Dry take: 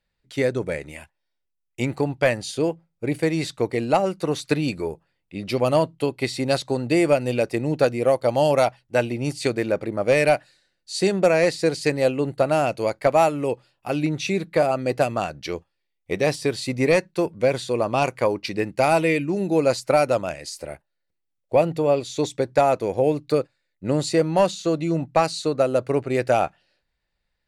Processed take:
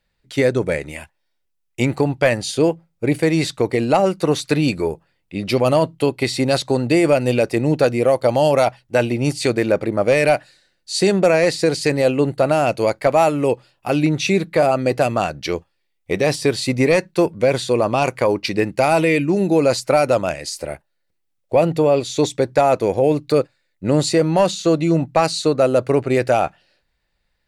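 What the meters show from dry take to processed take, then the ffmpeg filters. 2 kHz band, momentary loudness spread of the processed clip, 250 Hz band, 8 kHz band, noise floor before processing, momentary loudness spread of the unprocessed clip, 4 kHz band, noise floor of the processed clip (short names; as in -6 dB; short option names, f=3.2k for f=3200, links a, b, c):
+4.0 dB, 8 LU, +5.5 dB, +6.0 dB, -77 dBFS, 10 LU, +5.5 dB, -71 dBFS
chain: -af "alimiter=limit=-13dB:level=0:latency=1:release=22,volume=6.5dB"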